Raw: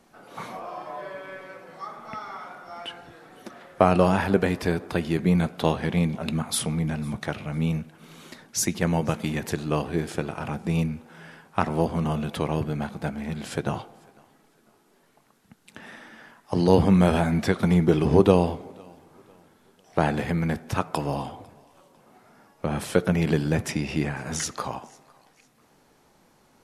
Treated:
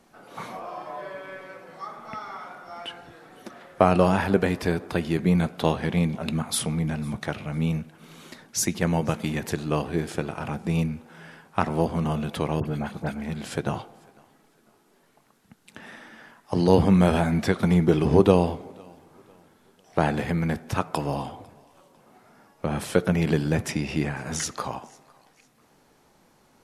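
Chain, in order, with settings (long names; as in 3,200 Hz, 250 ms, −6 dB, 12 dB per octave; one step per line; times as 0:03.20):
0:12.60–0:13.22: all-pass dispersion highs, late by 53 ms, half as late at 1,900 Hz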